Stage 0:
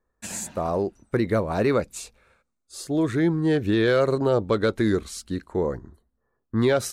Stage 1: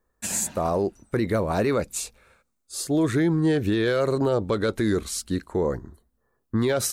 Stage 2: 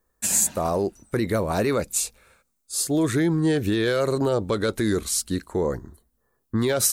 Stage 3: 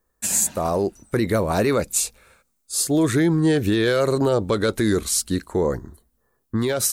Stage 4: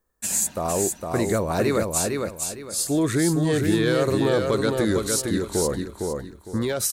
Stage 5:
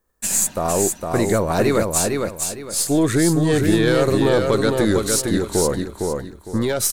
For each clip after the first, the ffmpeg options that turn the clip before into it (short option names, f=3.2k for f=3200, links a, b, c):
-af "highshelf=f=7.4k:g=8,alimiter=limit=-17dB:level=0:latency=1:release=42,volume=2.5dB"
-af "highshelf=f=5.4k:g=9"
-af "dynaudnorm=f=150:g=9:m=3dB"
-af "aecho=1:1:458|916|1374|1832:0.631|0.183|0.0531|0.0154,volume=-3dB"
-af "aeval=exprs='if(lt(val(0),0),0.708*val(0),val(0))':c=same,volume=5.5dB"